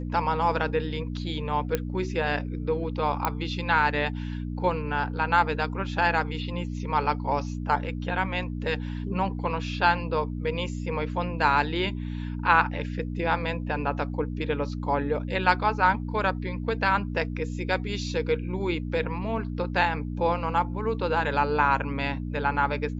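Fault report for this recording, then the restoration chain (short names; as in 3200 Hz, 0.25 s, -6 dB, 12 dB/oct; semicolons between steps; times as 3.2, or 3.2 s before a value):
hum 60 Hz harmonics 5 -32 dBFS
1.75 pop -11 dBFS
3.25 pop -10 dBFS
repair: de-click; de-hum 60 Hz, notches 5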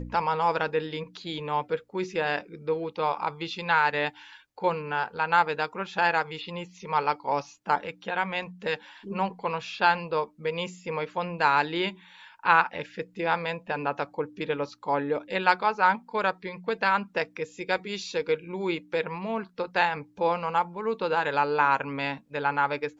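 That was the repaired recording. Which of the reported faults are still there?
none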